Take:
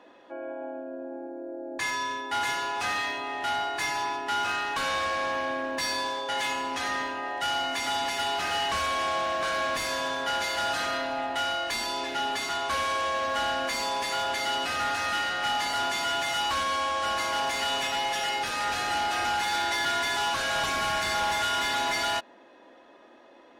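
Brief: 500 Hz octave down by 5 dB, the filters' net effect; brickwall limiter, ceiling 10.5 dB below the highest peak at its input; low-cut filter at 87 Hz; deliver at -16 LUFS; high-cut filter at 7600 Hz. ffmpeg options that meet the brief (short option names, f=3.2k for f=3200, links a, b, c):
-af "highpass=87,lowpass=7.6k,equalizer=f=500:t=o:g=-7,volume=19.5dB,alimiter=limit=-9.5dB:level=0:latency=1"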